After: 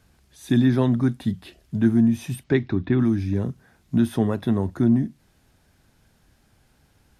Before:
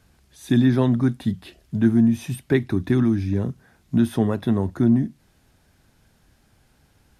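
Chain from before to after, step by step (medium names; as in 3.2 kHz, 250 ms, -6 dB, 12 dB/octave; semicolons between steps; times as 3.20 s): 2.43–2.99 s: low-pass 7.2 kHz -> 3.2 kHz 24 dB/octave; trim -1 dB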